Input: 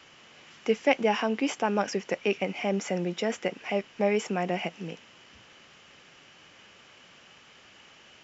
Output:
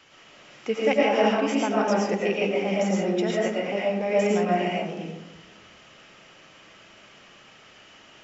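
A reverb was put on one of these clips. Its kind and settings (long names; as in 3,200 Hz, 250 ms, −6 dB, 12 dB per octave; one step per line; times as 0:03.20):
comb and all-pass reverb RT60 1 s, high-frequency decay 0.3×, pre-delay 70 ms, DRR −4.5 dB
level −2 dB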